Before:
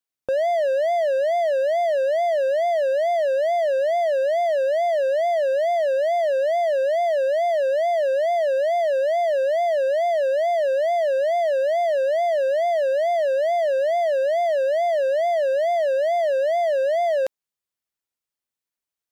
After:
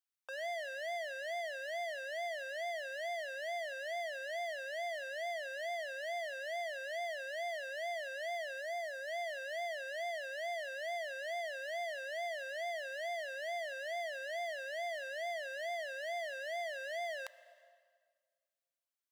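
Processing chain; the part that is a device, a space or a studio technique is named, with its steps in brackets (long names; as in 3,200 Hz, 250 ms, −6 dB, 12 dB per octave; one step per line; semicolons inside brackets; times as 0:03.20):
high-pass filter 970 Hz 24 dB per octave
compressed reverb return (on a send at −11 dB: convolution reverb RT60 1.7 s, pre-delay 6 ms + downward compressor, threshold −38 dBFS, peak gain reduction 9.5 dB)
0:08.61–0:09.08: on the sum: parametric band 2,900 Hz −10 dB 0.4 octaves
level −6.5 dB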